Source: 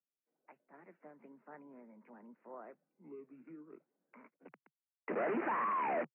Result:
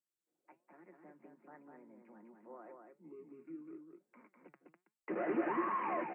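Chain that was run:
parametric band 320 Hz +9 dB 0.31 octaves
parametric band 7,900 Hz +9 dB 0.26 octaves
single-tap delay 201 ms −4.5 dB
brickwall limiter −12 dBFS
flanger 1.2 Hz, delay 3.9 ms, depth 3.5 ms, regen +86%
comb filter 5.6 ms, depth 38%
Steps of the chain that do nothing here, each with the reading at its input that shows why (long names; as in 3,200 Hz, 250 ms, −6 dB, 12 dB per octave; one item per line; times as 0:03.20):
parametric band 7,900 Hz: nothing at its input above 2,200 Hz
brickwall limiter −12 dBFS: peak of its input −20.5 dBFS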